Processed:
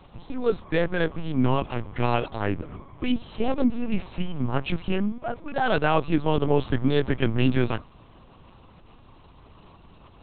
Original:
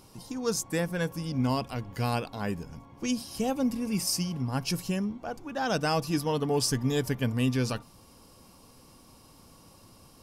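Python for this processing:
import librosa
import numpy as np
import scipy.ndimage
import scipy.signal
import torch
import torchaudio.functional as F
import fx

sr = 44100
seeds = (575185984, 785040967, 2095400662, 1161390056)

y = fx.highpass(x, sr, hz=68.0, slope=6)
y = fx.lpc_vocoder(y, sr, seeds[0], excitation='pitch_kept', order=8)
y = y * 10.0 ** (6.5 / 20.0)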